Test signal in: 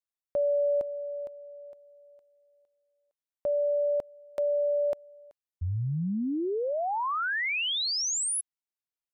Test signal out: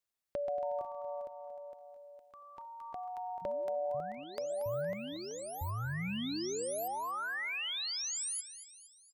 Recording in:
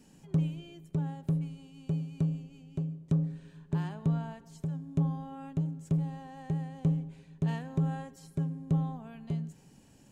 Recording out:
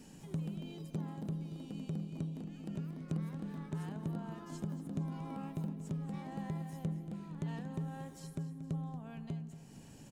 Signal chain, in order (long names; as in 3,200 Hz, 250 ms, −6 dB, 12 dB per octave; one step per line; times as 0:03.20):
downward compressor 2 to 1, threshold −52 dBFS
delay with pitch and tempo change per echo 204 ms, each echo +4 semitones, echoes 3, each echo −6 dB
repeating echo 232 ms, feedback 49%, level −13 dB
level +4 dB